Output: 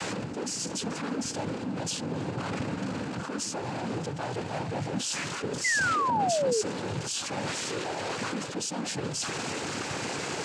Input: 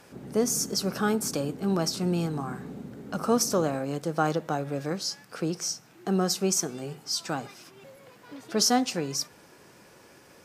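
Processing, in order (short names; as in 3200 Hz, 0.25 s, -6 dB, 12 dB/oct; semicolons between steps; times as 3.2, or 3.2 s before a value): zero-crossing step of -28.5 dBFS; reverse; compressor, threshold -30 dBFS, peak gain reduction 13 dB; reverse; soft clip -34 dBFS, distortion -12 dB; noise vocoder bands 8; painted sound fall, 5.64–6.62, 410–2100 Hz -31 dBFS; gain +4.5 dB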